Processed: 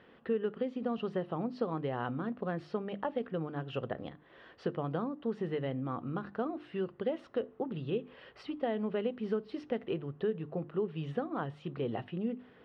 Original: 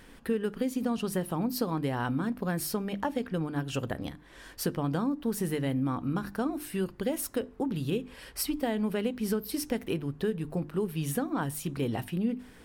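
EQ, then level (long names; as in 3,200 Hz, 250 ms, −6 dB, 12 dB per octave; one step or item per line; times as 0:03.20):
loudspeaker in its box 170–2,800 Hz, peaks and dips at 190 Hz −5 dB, 280 Hz −9 dB, 930 Hz −6 dB, 1,600 Hz −6 dB, 2,300 Hz −9 dB
0.0 dB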